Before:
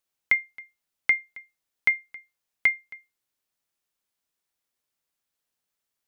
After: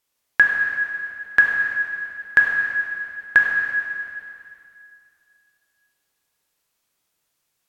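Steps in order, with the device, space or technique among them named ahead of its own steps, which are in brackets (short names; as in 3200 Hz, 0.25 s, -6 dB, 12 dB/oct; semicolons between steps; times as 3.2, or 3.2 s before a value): slowed and reverbed (varispeed -21%; reverb RT60 2.5 s, pre-delay 8 ms, DRR -1 dB); gain +6 dB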